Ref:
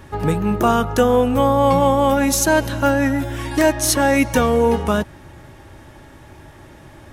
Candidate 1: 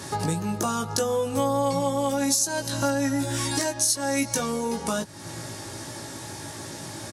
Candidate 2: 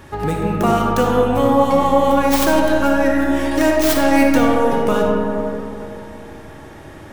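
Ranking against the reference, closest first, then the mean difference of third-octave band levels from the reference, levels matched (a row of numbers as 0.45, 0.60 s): 2, 1; 5.0, 8.5 dB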